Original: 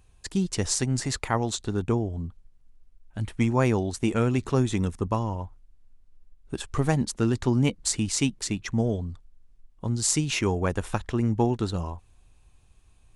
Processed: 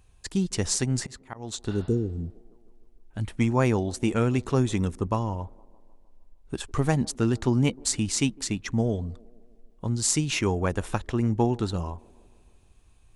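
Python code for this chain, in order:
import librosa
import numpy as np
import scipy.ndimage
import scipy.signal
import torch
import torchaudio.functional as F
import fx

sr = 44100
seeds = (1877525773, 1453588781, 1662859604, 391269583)

y = fx.auto_swell(x, sr, attack_ms=333.0, at=(1.0, 1.61))
y = fx.echo_wet_bandpass(y, sr, ms=154, feedback_pct=62, hz=460.0, wet_db=-23.5)
y = fx.spec_repair(y, sr, seeds[0], start_s=1.72, length_s=0.71, low_hz=520.0, high_hz=5400.0, source='both')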